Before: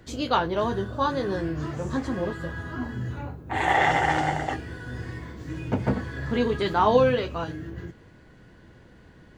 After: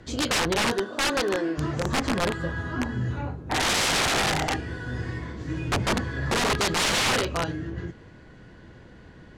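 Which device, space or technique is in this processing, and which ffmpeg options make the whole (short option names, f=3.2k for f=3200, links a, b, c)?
overflowing digital effects unit: -filter_complex "[0:a]asplit=3[a][b][c];[a]afade=t=out:st=0.71:d=0.02[d];[b]highpass=f=250:w=0.5412,highpass=f=250:w=1.3066,afade=t=in:st=0.71:d=0.02,afade=t=out:st=1.57:d=0.02[e];[c]afade=t=in:st=1.57:d=0.02[f];[d][e][f]amix=inputs=3:normalize=0,aeval=exprs='(mod(11.2*val(0)+1,2)-1)/11.2':c=same,lowpass=8.2k,volume=3.5dB"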